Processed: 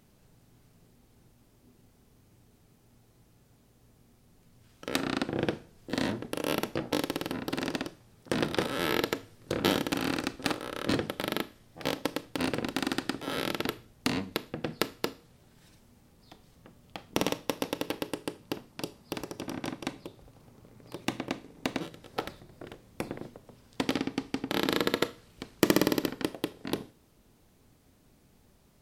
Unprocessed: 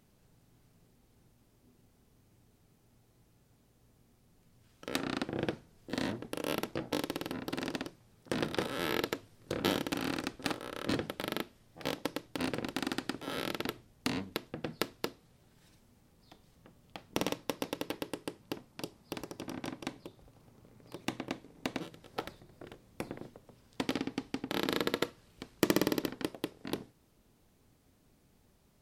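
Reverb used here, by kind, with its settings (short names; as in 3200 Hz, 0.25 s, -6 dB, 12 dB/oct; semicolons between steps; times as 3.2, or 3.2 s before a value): Schroeder reverb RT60 0.42 s, combs from 26 ms, DRR 17.5 dB; gain +4.5 dB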